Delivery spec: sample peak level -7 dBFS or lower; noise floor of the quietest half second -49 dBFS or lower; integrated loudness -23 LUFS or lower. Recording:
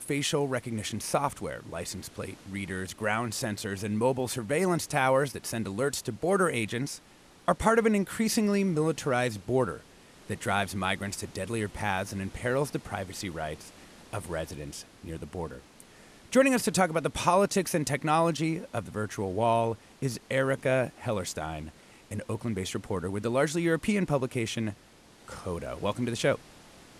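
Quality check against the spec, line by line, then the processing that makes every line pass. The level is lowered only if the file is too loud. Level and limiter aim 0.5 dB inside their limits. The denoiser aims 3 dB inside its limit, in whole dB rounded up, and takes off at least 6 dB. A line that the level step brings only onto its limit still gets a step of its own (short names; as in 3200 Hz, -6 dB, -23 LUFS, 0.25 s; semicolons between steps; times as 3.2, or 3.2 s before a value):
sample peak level -10.0 dBFS: OK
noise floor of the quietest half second -56 dBFS: OK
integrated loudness -29.5 LUFS: OK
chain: none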